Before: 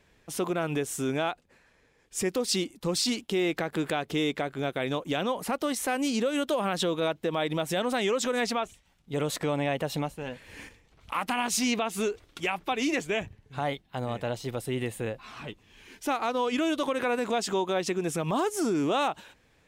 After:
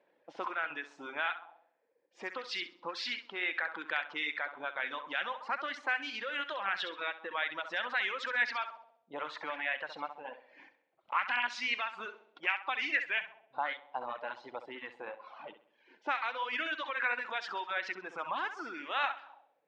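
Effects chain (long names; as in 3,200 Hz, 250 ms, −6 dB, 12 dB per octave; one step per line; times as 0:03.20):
loudspeaker in its box 330–4,900 Hz, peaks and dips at 420 Hz −10 dB, 680 Hz −6 dB, 1,200 Hz −5 dB
on a send: flutter between parallel walls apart 11.3 metres, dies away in 0.72 s
on the sum: envelope filter 550–1,700 Hz, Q 2.1, up, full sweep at −28 dBFS
reverb reduction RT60 1.1 s
level +6 dB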